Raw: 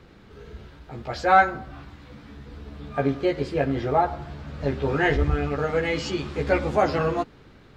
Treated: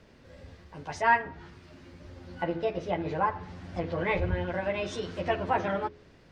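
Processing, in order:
treble cut that deepens with the level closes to 2,500 Hz, closed at −20.5 dBFS
speed change +23%
hum removal 83.8 Hz, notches 6
level −6 dB

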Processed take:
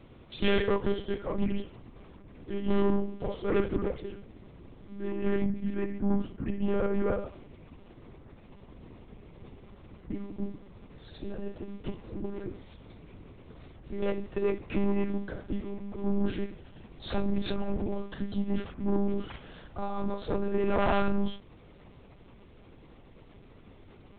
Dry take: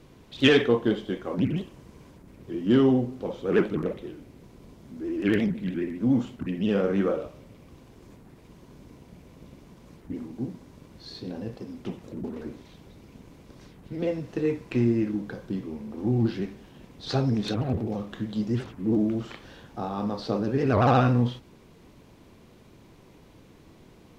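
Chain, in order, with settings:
0:05.11–0:07.26: low-pass filter 1,500 Hz 6 dB per octave
soft clipping −20.5 dBFS, distortion −11 dB
one-pitch LPC vocoder at 8 kHz 200 Hz

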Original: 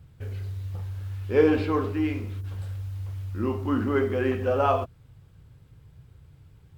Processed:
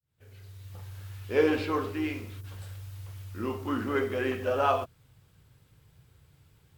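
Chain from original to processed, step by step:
fade in at the beginning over 0.96 s
spectral tilt +2 dB per octave
pitch-shifted copies added +3 semitones −15 dB
level −2 dB

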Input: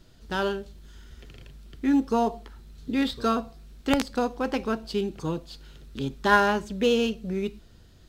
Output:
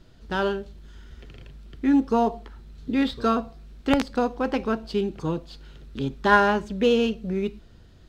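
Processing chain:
high-shelf EQ 5,600 Hz −11.5 dB
level +2.5 dB

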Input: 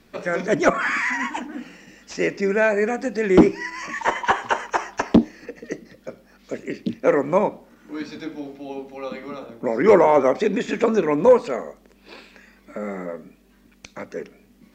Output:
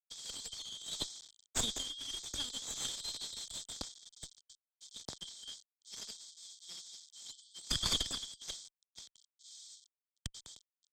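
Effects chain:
hold until the input has moved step −37 dBFS
first difference
compressor whose output falls as the input rises −38 dBFS, ratio −0.5
linear-phase brick-wall band-pass 2,300–6,300 Hz
asymmetric clip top −51.5 dBFS, bottom −30.5 dBFS
high-frequency loss of the air 71 metres
wrong playback speed 33 rpm record played at 45 rpm
multiband upward and downward expander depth 100%
level +10.5 dB

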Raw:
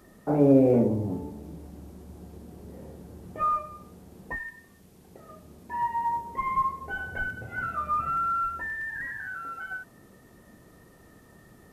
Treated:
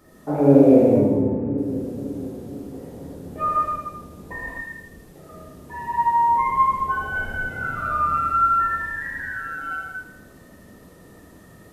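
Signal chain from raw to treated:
0:00.96–0:01.58: Butterworth low-pass 2,500 Hz 48 dB per octave
on a send: echo with a time of its own for lows and highs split 460 Hz, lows 499 ms, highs 80 ms, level −8 dB
on the sum: reverb whose tail is shaped and stops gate 280 ms flat, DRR −5.5 dB
level −1 dB

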